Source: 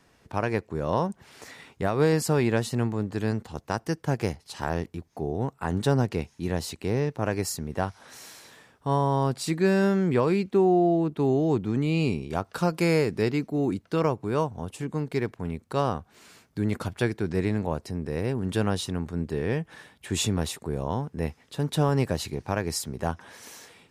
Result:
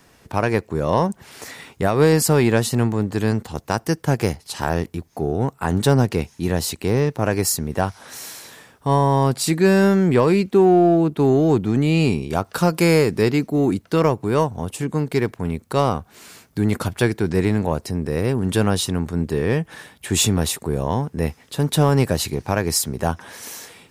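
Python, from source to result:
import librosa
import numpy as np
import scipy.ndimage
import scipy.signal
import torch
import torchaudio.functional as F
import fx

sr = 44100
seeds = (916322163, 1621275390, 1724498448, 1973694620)

p1 = fx.high_shelf(x, sr, hz=9800.0, db=10.0)
p2 = np.clip(10.0 ** (22.5 / 20.0) * p1, -1.0, 1.0) / 10.0 ** (22.5 / 20.0)
p3 = p1 + (p2 * 10.0 ** (-11.0 / 20.0))
y = p3 * 10.0 ** (5.5 / 20.0)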